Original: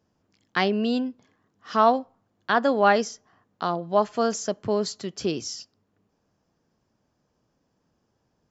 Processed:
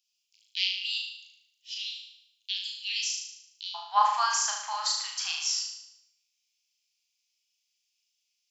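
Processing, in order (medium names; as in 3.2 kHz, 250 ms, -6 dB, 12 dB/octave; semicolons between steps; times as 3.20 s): steep high-pass 2.5 kHz 72 dB/octave, from 3.74 s 820 Hz, from 5.59 s 2.3 kHz; flutter echo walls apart 6.4 m, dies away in 0.77 s; trim +3.5 dB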